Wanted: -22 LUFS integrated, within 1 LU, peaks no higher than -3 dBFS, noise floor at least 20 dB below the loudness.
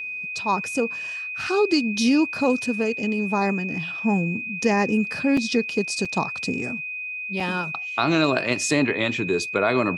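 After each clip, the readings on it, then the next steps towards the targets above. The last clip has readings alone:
dropouts 3; longest dropout 4.2 ms; steady tone 2500 Hz; tone level -29 dBFS; loudness -23.0 LUFS; peak -6.5 dBFS; loudness target -22.0 LUFS
-> interpolate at 5.37/6.05/7.4, 4.2 ms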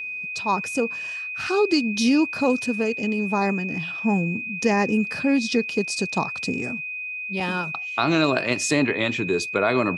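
dropouts 0; steady tone 2500 Hz; tone level -29 dBFS
-> notch 2500 Hz, Q 30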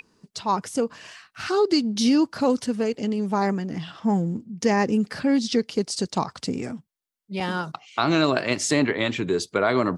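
steady tone none; loudness -24.0 LUFS; peak -6.0 dBFS; loudness target -22.0 LUFS
-> gain +2 dB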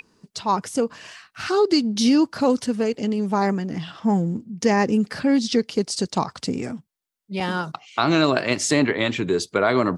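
loudness -22.0 LUFS; peak -4.0 dBFS; noise floor -74 dBFS

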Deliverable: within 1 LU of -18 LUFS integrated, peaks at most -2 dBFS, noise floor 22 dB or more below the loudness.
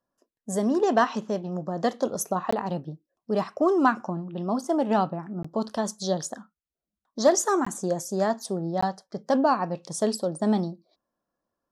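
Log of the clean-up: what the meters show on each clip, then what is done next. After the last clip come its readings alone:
dropouts 4; longest dropout 15 ms; loudness -26.5 LUFS; peak -9.0 dBFS; loudness target -18.0 LUFS
-> interpolate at 2.51/5.43/7.65/8.81, 15 ms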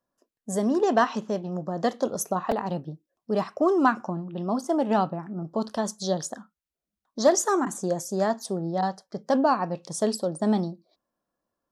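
dropouts 0; loudness -26.5 LUFS; peak -9.0 dBFS; loudness target -18.0 LUFS
-> gain +8.5 dB; limiter -2 dBFS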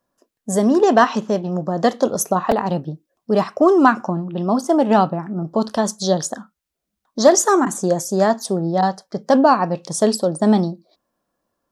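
loudness -18.0 LUFS; peak -2.0 dBFS; noise floor -80 dBFS

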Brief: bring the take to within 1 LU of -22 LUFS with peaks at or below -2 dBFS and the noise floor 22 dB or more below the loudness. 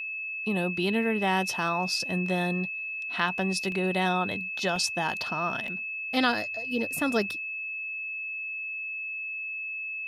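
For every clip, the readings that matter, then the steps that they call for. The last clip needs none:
dropouts 3; longest dropout 1.5 ms; steady tone 2600 Hz; tone level -32 dBFS; loudness -28.5 LUFS; peak -11.0 dBFS; loudness target -22.0 LUFS
-> interpolate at 3.72/4.76/5.68, 1.5 ms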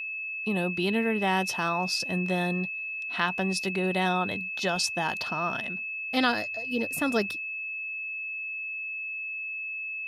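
dropouts 0; steady tone 2600 Hz; tone level -32 dBFS
-> notch 2600 Hz, Q 30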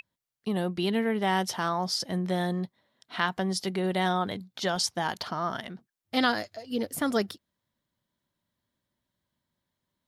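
steady tone none; loudness -29.5 LUFS; peak -12.5 dBFS; loudness target -22.0 LUFS
-> gain +7.5 dB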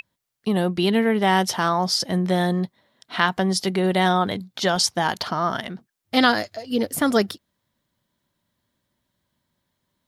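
loudness -22.0 LUFS; peak -5.0 dBFS; noise floor -78 dBFS

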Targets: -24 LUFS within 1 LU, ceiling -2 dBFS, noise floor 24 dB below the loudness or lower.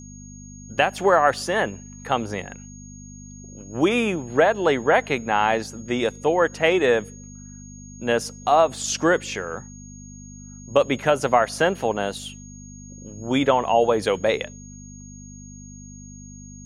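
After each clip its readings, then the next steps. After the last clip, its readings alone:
hum 50 Hz; harmonics up to 250 Hz; hum level -39 dBFS; steady tone 6600 Hz; tone level -45 dBFS; loudness -21.5 LUFS; peak -3.5 dBFS; loudness target -24.0 LUFS
-> de-hum 50 Hz, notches 5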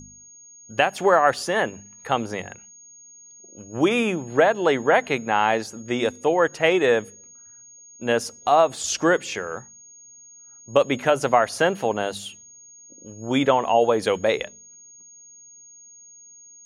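hum none; steady tone 6600 Hz; tone level -45 dBFS
-> notch 6600 Hz, Q 30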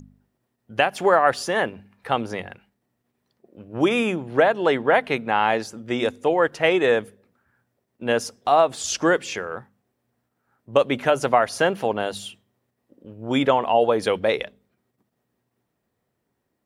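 steady tone none; loudness -21.5 LUFS; peak -3.5 dBFS; loudness target -24.0 LUFS
-> gain -2.5 dB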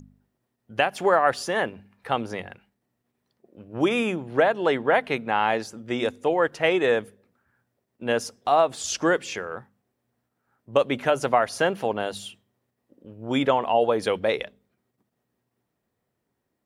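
loudness -24.0 LUFS; peak -6.0 dBFS; noise floor -79 dBFS

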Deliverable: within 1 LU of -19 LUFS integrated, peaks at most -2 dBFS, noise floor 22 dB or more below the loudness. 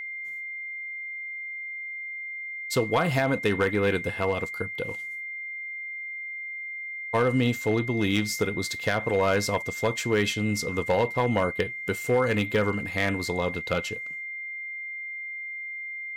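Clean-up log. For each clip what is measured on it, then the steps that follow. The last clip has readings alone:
clipped 0.4%; flat tops at -15.5 dBFS; steady tone 2100 Hz; tone level -33 dBFS; loudness -28.0 LUFS; peak -15.5 dBFS; loudness target -19.0 LUFS
-> clip repair -15.5 dBFS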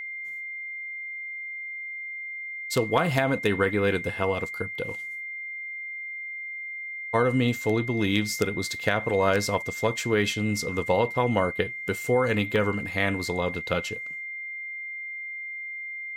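clipped 0.0%; steady tone 2100 Hz; tone level -33 dBFS
-> notch 2100 Hz, Q 30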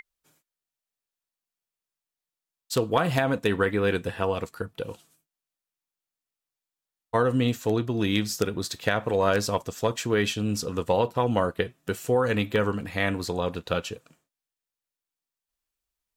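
steady tone none; loudness -26.5 LUFS; peak -7.0 dBFS; loudness target -19.0 LUFS
-> gain +7.5 dB; limiter -2 dBFS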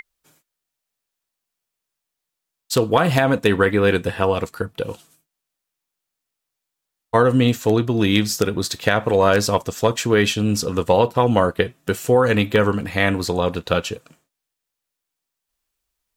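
loudness -19.0 LUFS; peak -2.0 dBFS; noise floor -82 dBFS

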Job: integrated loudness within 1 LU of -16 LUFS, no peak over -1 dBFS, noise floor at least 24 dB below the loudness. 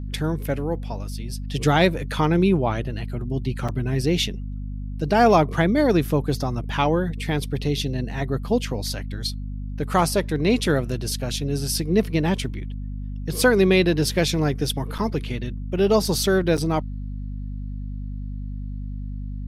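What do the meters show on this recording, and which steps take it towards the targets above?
dropouts 3; longest dropout 6.3 ms; hum 50 Hz; harmonics up to 250 Hz; hum level -28 dBFS; loudness -22.5 LUFS; peak -4.5 dBFS; loudness target -16.0 LUFS
-> interpolate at 3.68/14.98/16.57, 6.3 ms; de-hum 50 Hz, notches 5; gain +6.5 dB; limiter -1 dBFS

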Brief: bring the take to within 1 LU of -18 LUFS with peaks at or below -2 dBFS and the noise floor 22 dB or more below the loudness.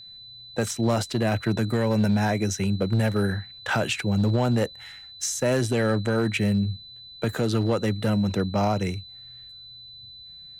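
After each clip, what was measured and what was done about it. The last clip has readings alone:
clipped 1.1%; flat tops at -16.0 dBFS; steady tone 4000 Hz; tone level -42 dBFS; loudness -25.0 LUFS; peak -16.0 dBFS; loudness target -18.0 LUFS
-> clip repair -16 dBFS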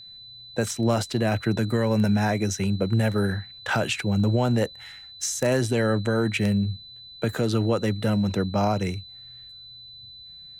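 clipped 0.0%; steady tone 4000 Hz; tone level -42 dBFS
-> notch 4000 Hz, Q 30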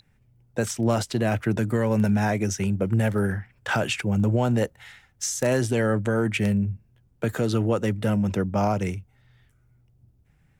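steady tone none; loudness -24.5 LUFS; peak -7.5 dBFS; loudness target -18.0 LUFS
-> gain +6.5 dB; limiter -2 dBFS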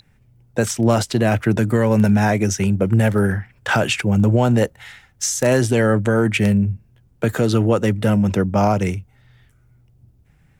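loudness -18.5 LUFS; peak -2.0 dBFS; noise floor -56 dBFS

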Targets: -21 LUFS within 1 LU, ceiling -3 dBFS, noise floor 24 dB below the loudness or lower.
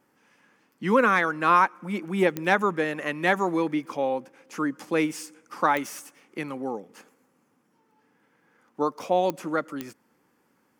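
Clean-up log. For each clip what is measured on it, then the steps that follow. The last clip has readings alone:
clicks 4; loudness -25.5 LUFS; peak -6.0 dBFS; loudness target -21.0 LUFS
-> de-click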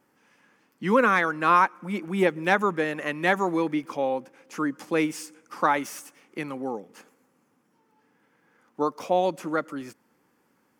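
clicks 0; loudness -25.5 LUFS; peak -6.0 dBFS; loudness target -21.0 LUFS
-> gain +4.5 dB; limiter -3 dBFS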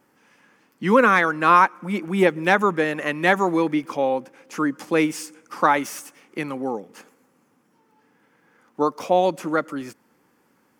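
loudness -21.0 LUFS; peak -3.0 dBFS; noise floor -64 dBFS

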